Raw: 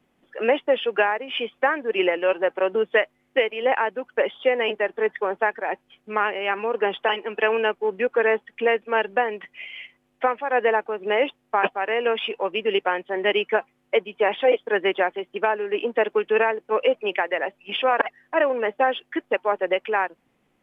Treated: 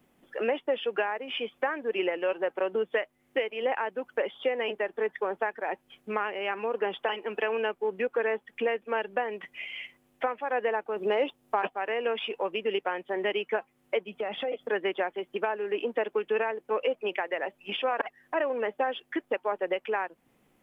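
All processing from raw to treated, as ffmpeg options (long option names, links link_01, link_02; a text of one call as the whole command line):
ffmpeg -i in.wav -filter_complex "[0:a]asettb=1/sr,asplit=3[link_01][link_02][link_03];[link_01]atrim=end=10.964[link_04];[link_02]atrim=start=10.96:end=11.62,asetpts=PTS-STARTPTS,afade=type=in:duration=0.004:curve=qsin,afade=type=out:start_time=0.656:duration=0.004:curve=qsin,equalizer=frequency=1900:width=1.3:gain=-4.5,acontrast=23[link_05];[link_03]atrim=start=11.616[link_06];[link_04][link_05]acrossfade=duration=0.004:curve1=hsin:curve2=qsin[link_07];[link_07][link_06]acrossfade=duration=0.004:curve1=qsin:curve2=hsin,asettb=1/sr,asplit=3[link_08][link_09][link_10];[link_08]atrim=end=14.084[link_11];[link_09]atrim=start=14.08:end=14.7,asetpts=PTS-STARTPTS,afade=type=in:duration=0.004:curve=qsin,afade=type=out:start_time=0.616:duration=0.004:curve=qsin,equalizer=frequency=230:width_type=o:width=1:gain=8.5,aecho=1:1:1.5:0.4,atrim=end_sample=27342,acompressor=threshold=-29dB:ratio=3:attack=3.2:release=140:knee=1:detection=peak[link_12];[link_10]atrim=start=14.696[link_13];[link_11][link_12]acrossfade=duration=0.004:curve1=hsin:curve2=qsin[link_14];[link_14][link_13]acrossfade=duration=0.004:curve1=qsin:curve2=hsin,aemphasis=mode=production:type=75kf,acompressor=threshold=-32dB:ratio=2,highshelf=frequency=2100:gain=-9,volume=1.5dB" out.wav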